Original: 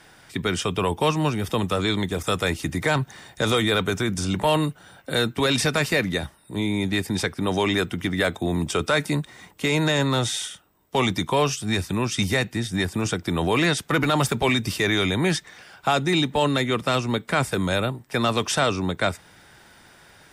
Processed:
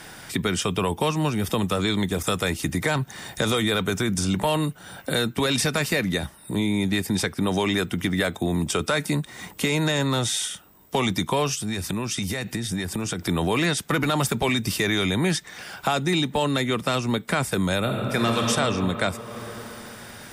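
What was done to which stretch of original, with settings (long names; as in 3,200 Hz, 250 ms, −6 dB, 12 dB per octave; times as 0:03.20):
0:11.55–0:13.29: downward compressor, threshold −29 dBFS
0:17.79–0:18.45: thrown reverb, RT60 2.9 s, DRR 0 dB
whole clip: high-shelf EQ 8,300 Hz +7.5 dB; downward compressor 2 to 1, threshold −37 dBFS; parametric band 200 Hz +3.5 dB 0.56 octaves; level +8 dB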